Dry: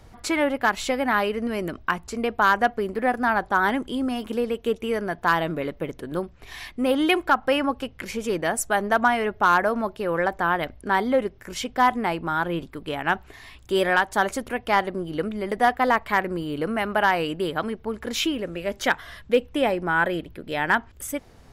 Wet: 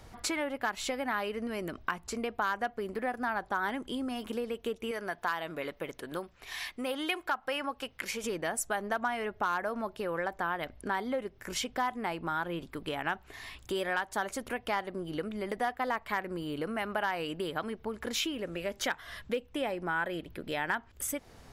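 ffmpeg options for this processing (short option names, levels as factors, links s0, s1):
-filter_complex "[0:a]asettb=1/sr,asplit=3[s0][s1][s2];[s0]atrim=end=4.914[s3];[s1]atrim=start=4.91:end=8.24,asetpts=PTS-STARTPTS,afade=t=in:d=0.004:c=qsin,afade=t=out:st=3.326:d=0.004:c=qsin,lowshelf=f=430:g=-10[s4];[s2]atrim=start=8.236[s5];[s3][s4]acrossfade=d=0.004:c1=hsin:c2=qsin[s6];[s6][s5]acrossfade=d=0.004:c1=qsin:c2=hsin,bass=f=250:g=3,treble=f=4000:g=1,acompressor=threshold=0.0282:ratio=3,lowshelf=f=280:g=-7.5"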